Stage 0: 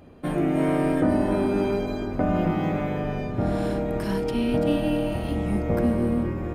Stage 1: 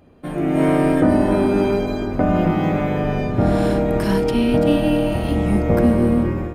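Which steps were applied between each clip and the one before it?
level rider gain up to 11.5 dB; trim -2.5 dB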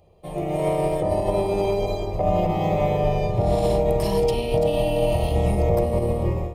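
peak limiter -12 dBFS, peak gain reduction 7 dB; static phaser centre 630 Hz, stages 4; upward expansion 1.5:1, over -33 dBFS; trim +4.5 dB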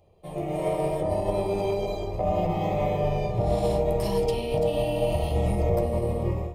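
flange 0.72 Hz, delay 8.4 ms, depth 9.2 ms, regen -50%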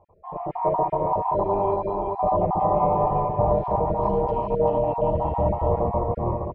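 random holes in the spectrogram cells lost 29%; resonant low-pass 1 kHz, resonance Q 7.1; delay 387 ms -5 dB

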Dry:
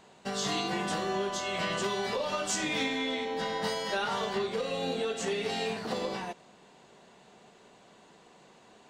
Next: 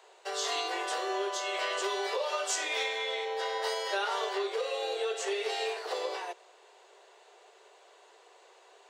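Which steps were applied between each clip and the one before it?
steep high-pass 370 Hz 72 dB/octave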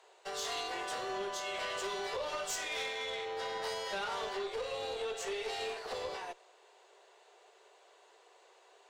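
valve stage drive 28 dB, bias 0.45; trim -2.5 dB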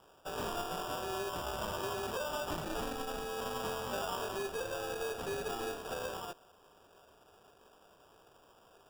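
sample-and-hold 21×

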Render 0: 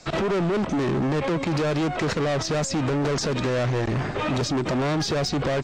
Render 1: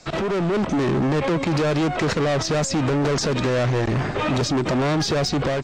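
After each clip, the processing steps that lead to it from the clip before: level rider gain up to 3 dB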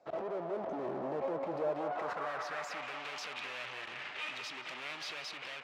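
Chebyshev shaper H 6 -14 dB, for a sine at -16.5 dBFS; band-pass sweep 630 Hz -> 2.6 kHz, 1.63–2.94 s; band-passed feedback delay 185 ms, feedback 84%, band-pass 960 Hz, level -5.5 dB; trim -7.5 dB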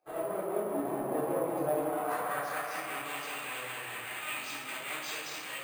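volume shaper 151 bpm, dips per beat 2, -19 dB, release 139 ms; simulated room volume 390 m³, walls mixed, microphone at 3.8 m; careless resampling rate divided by 4×, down filtered, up hold; trim -4.5 dB

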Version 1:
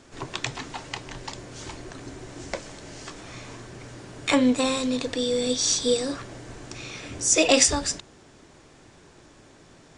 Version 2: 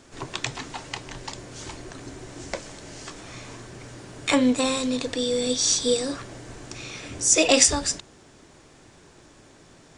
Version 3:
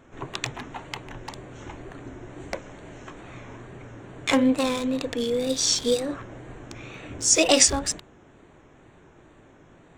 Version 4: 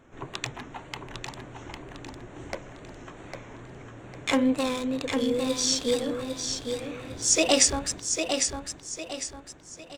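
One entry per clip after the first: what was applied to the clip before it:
treble shelf 8.5 kHz +5.5 dB
local Wiener filter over 9 samples; wow and flutter 84 cents
feedback delay 803 ms, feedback 38%, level -6 dB; trim -3 dB

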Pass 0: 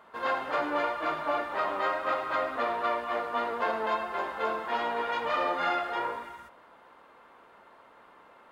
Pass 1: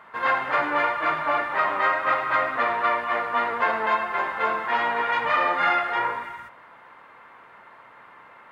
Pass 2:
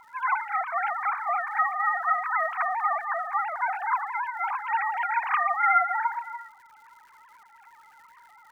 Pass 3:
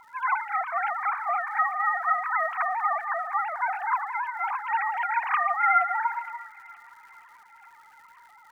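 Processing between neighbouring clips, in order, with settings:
graphic EQ 125/1000/2000 Hz +10/+5/+11 dB
formants replaced by sine waves; crackle 290 per s -47 dBFS; trim -3 dB
feedback echo behind a high-pass 468 ms, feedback 56%, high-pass 2.1 kHz, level -14.5 dB

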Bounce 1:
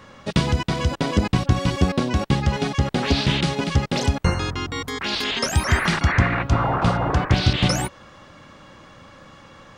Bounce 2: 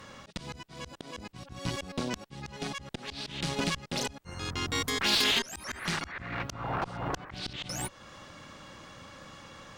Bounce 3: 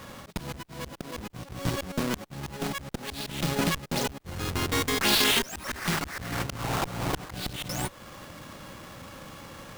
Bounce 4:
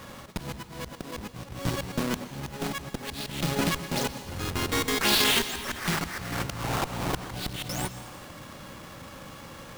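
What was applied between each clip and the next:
treble shelf 3.6 kHz +8.5 dB; slow attack 509 ms; Chebyshev shaper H 8 -23 dB, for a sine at -9.5 dBFS; trim -4 dB
square wave that keeps the level
plate-style reverb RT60 1.4 s, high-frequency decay 0.95×, pre-delay 105 ms, DRR 11.5 dB

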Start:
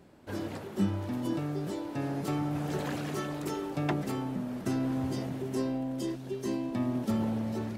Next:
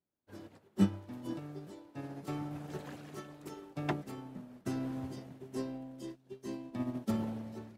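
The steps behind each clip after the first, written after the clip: upward expansion 2.5:1, over -49 dBFS; trim +2.5 dB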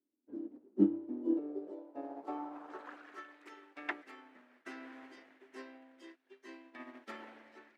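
band-pass sweep 260 Hz -> 1.9 kHz, 0.79–3.38 s; resonant low shelf 210 Hz -10.5 dB, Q 3; trim +6 dB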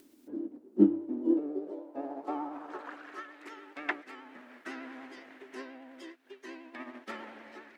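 vibrato 10 Hz 53 cents; upward compressor, threshold -48 dBFS; trim +5.5 dB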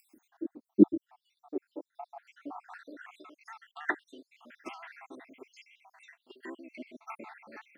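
random holes in the spectrogram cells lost 73%; trim +3.5 dB

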